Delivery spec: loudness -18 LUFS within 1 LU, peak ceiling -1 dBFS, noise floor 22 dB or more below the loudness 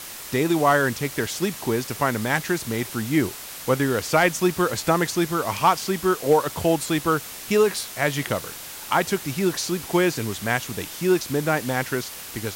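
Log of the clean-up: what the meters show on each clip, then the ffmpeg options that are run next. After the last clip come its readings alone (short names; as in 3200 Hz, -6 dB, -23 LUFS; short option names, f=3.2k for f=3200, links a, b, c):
noise floor -37 dBFS; noise floor target -45 dBFS; loudness -23.0 LUFS; peak -7.5 dBFS; loudness target -18.0 LUFS
-> -af "afftdn=nr=8:nf=-37"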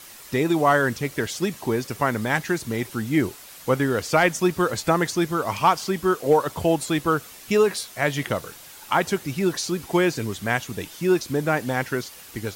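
noise floor -44 dBFS; noise floor target -46 dBFS
-> -af "afftdn=nr=6:nf=-44"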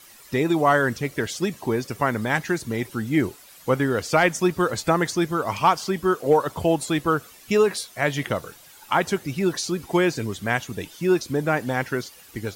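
noise floor -49 dBFS; loudness -23.5 LUFS; peak -7.5 dBFS; loudness target -18.0 LUFS
-> -af "volume=5.5dB"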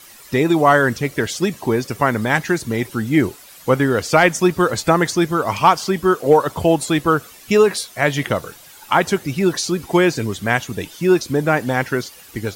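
loudness -18.0 LUFS; peak -2.0 dBFS; noise floor -43 dBFS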